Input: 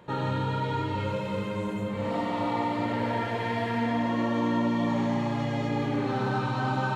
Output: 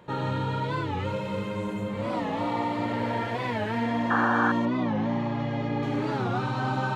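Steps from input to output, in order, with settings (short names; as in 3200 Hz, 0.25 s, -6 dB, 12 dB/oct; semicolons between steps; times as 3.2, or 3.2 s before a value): 4.1–4.52 painted sound noise 700–1800 Hz -25 dBFS; 4.65–5.83 air absorption 150 m; record warp 45 rpm, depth 160 cents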